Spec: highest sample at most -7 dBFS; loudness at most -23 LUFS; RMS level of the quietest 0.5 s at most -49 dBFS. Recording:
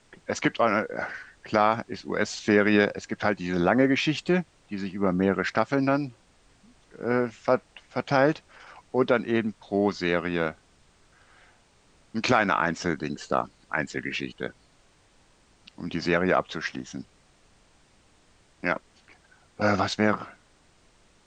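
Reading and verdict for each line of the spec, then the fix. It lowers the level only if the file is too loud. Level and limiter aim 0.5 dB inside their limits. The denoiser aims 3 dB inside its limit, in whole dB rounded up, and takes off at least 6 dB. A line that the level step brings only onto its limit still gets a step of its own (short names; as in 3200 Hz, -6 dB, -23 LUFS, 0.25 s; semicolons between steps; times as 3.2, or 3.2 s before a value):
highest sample -6.0 dBFS: fail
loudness -26.0 LUFS: OK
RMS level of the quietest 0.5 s -61 dBFS: OK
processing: limiter -7.5 dBFS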